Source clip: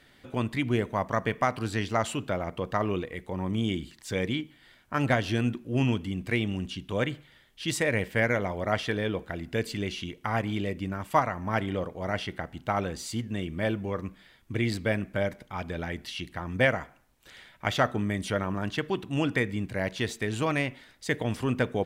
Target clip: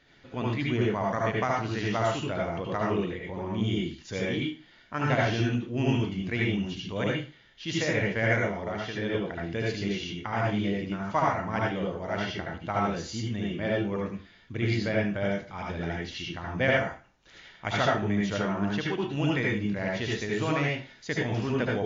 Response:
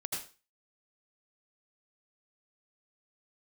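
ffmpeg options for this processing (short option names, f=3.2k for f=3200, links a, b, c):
-filter_complex "[0:a]asettb=1/sr,asplit=3[a][b][c];[a]atrim=end=8.384[d];[b]atrim=start=8.38:end=9.02,asetpts=PTS-STARTPTS,afade=t=in:d=0.004:c=qsin,afade=t=out:st=0.636:d=0.004:c=qsin,acompressor=threshold=-30dB:ratio=4[e];[c]atrim=start=9.016[f];[d][e]acrossfade=d=0.004:c1=hsin:c2=qsin[g];[g][f]acrossfade=d=0.004:c1=qsin:c2=hsin[h];[1:a]atrim=start_sample=2205,asetrate=48510,aresample=44100[i];[h][i]afir=irnorm=-1:irlink=0" -ar 16000 -c:a libmp3lame -b:a 40k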